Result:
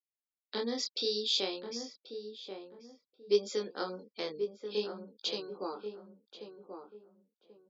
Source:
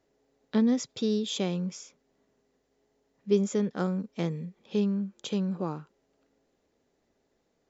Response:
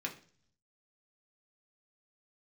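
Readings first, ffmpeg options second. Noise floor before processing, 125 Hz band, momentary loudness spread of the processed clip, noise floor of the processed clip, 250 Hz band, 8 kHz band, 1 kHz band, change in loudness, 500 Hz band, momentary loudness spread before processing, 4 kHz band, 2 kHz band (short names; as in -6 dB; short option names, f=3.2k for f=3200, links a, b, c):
-75 dBFS, under -20 dB, 19 LU, under -85 dBFS, -15.0 dB, n/a, -2.5 dB, -6.0 dB, -2.0 dB, 11 LU, +5.5 dB, -1.5 dB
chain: -filter_complex "[0:a]lowpass=f=4.6k:t=q:w=6.2,afftfilt=real='re*gte(hypot(re,im),0.00501)':imag='im*gte(hypot(re,im),0.00501)':win_size=1024:overlap=0.75,highpass=f=330:w=0.5412,highpass=f=330:w=1.3066,bandreject=f=640:w=12,flanger=delay=18.5:depth=7.9:speed=0.56,asplit=2[a][b];[b]adelay=1085,lowpass=f=1.1k:p=1,volume=-7dB,asplit=2[c][d];[d]adelay=1085,lowpass=f=1.1k:p=1,volume=0.28,asplit=2[e][f];[f]adelay=1085,lowpass=f=1.1k:p=1,volume=0.28[g];[c][e][g]amix=inputs=3:normalize=0[h];[a][h]amix=inputs=2:normalize=0"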